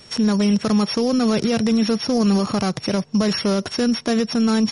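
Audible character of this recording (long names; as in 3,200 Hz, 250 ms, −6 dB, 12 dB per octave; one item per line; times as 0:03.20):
a buzz of ramps at a fixed pitch in blocks of 8 samples
MP3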